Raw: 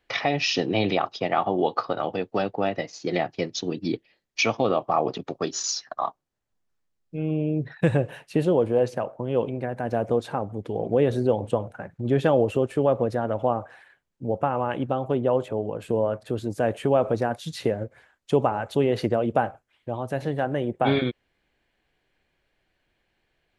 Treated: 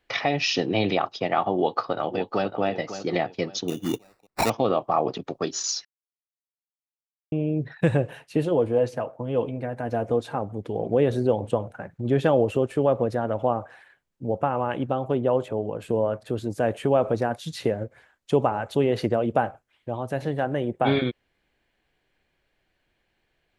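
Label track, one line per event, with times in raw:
1.560000	2.610000	echo throw 0.55 s, feedback 30%, level -11 dB
3.680000	4.500000	sample-rate reducer 3200 Hz
5.850000	7.320000	mute
8.130000	10.360000	notch comb 190 Hz

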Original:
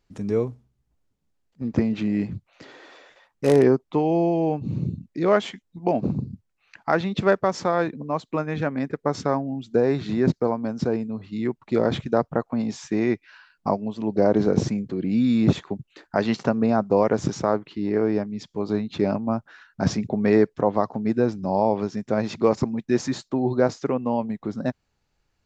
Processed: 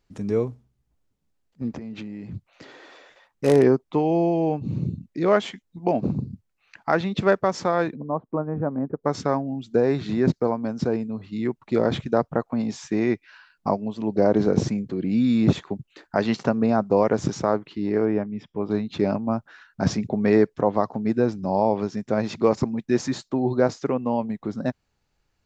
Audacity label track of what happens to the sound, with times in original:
1.700000	2.340000	compressor 16:1, threshold -31 dBFS
4.220000	5.080000	short-mantissa float mantissa of 8-bit
7.950000	9.040000	LPF 1100 Hz 24 dB/oct
18.050000	18.710000	polynomial smoothing over 25 samples

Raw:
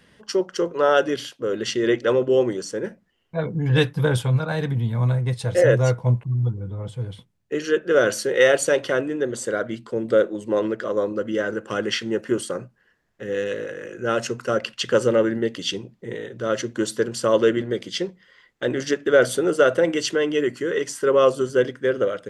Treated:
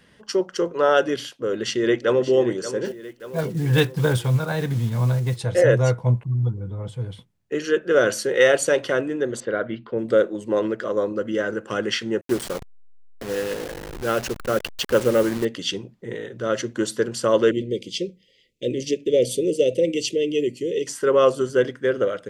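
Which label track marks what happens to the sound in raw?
1.490000	2.330000	echo throw 0.58 s, feedback 55%, level -12.5 dB
2.850000	5.390000	block floating point 5-bit
6.490000	6.960000	short-mantissa float mantissa of 8-bit
9.400000	9.990000	LPF 3500 Hz 24 dB/oct
12.210000	15.450000	level-crossing sampler step -28 dBFS
17.510000	20.870000	elliptic band-stop 520–2400 Hz

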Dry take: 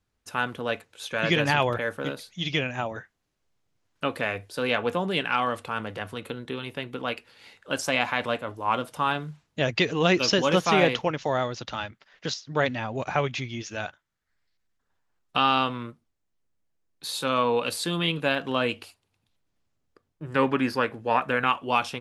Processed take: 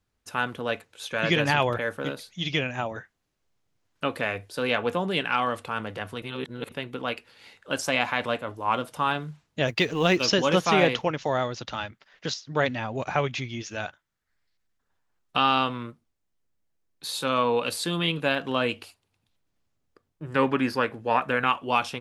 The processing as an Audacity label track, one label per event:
6.220000	6.720000	reverse
9.670000	10.250000	G.711 law mismatch coded by A

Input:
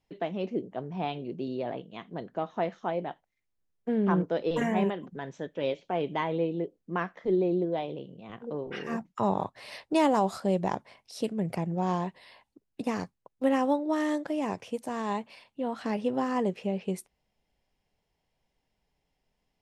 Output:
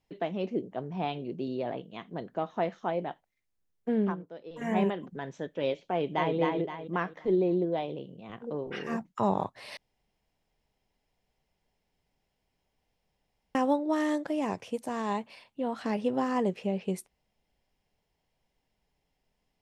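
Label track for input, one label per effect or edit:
4.020000	4.730000	dip -15.5 dB, fades 0.14 s
5.910000	6.350000	echo throw 0.26 s, feedback 40%, level -2.5 dB
9.770000	13.550000	room tone

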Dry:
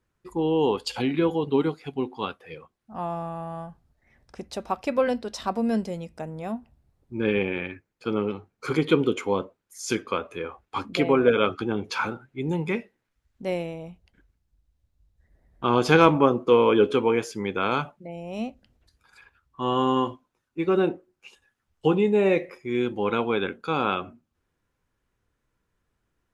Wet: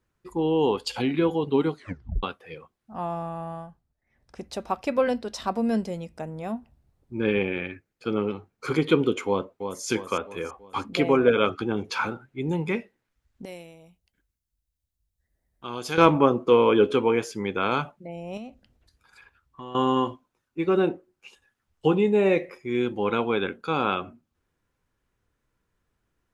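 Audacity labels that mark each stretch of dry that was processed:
1.750000	1.750000	tape stop 0.48 s
3.500000	4.430000	dip -11.5 dB, fades 0.35 s
7.460000	8.180000	bell 970 Hz -6 dB 0.33 oct
9.270000	9.840000	echo throw 0.33 s, feedback 50%, level -7.5 dB
13.450000	15.980000	pre-emphasis coefficient 0.8
18.370000	19.750000	compressor 4:1, threshold -37 dBFS

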